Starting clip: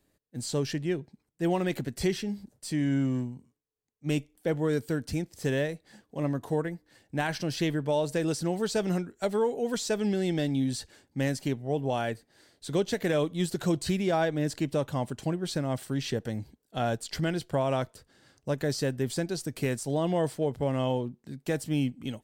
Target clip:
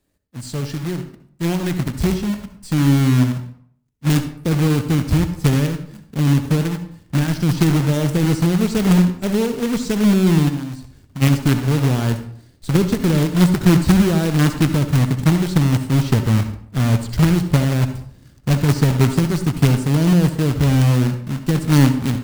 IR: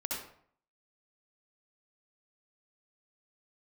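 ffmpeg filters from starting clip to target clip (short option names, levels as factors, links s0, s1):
-filter_complex "[0:a]asubboost=boost=10:cutoff=230,acrusher=bits=2:mode=log:mix=0:aa=0.000001,asplit=3[s0][s1][s2];[s0]afade=t=out:st=10.48:d=0.02[s3];[s1]acompressor=threshold=0.0224:ratio=3,afade=t=in:st=10.48:d=0.02,afade=t=out:st=11.21:d=0.02[s4];[s2]afade=t=in:st=11.21:d=0.02[s5];[s3][s4][s5]amix=inputs=3:normalize=0,asplit=2[s6][s7];[1:a]atrim=start_sample=2205,lowshelf=f=140:g=8.5[s8];[s7][s8]afir=irnorm=-1:irlink=0,volume=0.355[s9];[s6][s9]amix=inputs=2:normalize=0,volume=0.794"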